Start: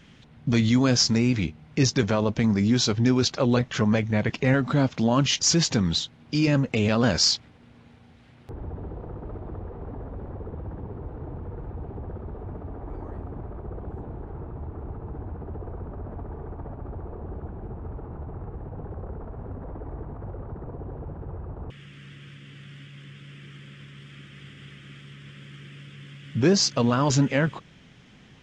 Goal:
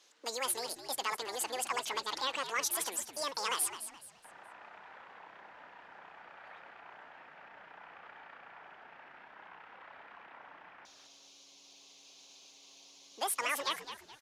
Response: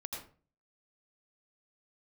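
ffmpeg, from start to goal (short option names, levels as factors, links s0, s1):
-filter_complex "[0:a]highpass=550,lowpass=4500,asplit=5[s0][s1][s2][s3][s4];[s1]adelay=423,afreqshift=-50,volume=0.282[s5];[s2]adelay=846,afreqshift=-100,volume=0.0955[s6];[s3]adelay=1269,afreqshift=-150,volume=0.0327[s7];[s4]adelay=1692,afreqshift=-200,volume=0.0111[s8];[s0][s5][s6][s7][s8]amix=inputs=5:normalize=0,asetrate=88200,aresample=44100,volume=0.473"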